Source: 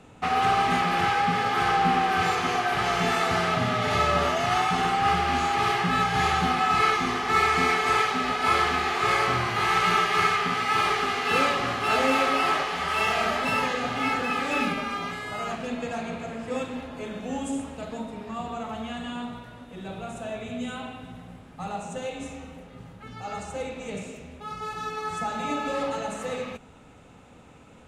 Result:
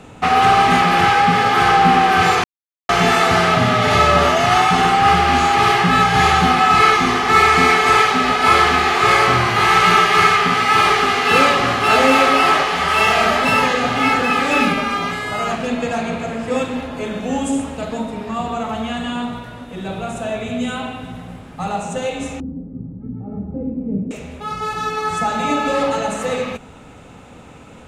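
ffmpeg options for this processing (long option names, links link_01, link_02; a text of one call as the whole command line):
ffmpeg -i in.wav -filter_complex "[0:a]asettb=1/sr,asplit=3[link_01][link_02][link_03];[link_01]atrim=end=22.404[link_04];[link_02]atrim=start=22.4:end=24.11,asetpts=PTS-STARTPTS,afade=type=in:duration=0.004:curve=qsin,afade=type=out:start_time=1.706:duration=0.004:curve=qsin,lowpass=frequency=260:width_type=q:width=2.5[link_05];[link_03]atrim=start=24.106[link_06];[link_04][link_05]acrossfade=duration=0.004:curve1=hsin:curve2=qsin[link_07];[link_07][link_06]acrossfade=duration=0.004:curve1=qsin:curve2=hsin,asplit=3[link_08][link_09][link_10];[link_08]atrim=end=2.44,asetpts=PTS-STARTPTS,afade=type=out:start_time=2.436:duration=0.004:curve=hsin[link_11];[link_09]atrim=start=2.44:end=2.89,asetpts=PTS-STARTPTS,volume=0[link_12];[link_10]atrim=start=2.89,asetpts=PTS-STARTPTS,afade=type=in:duration=0.004:curve=hsin[link_13];[link_11][link_12][link_13]concat=n=3:v=0:a=1,acontrast=89,volume=3dB" out.wav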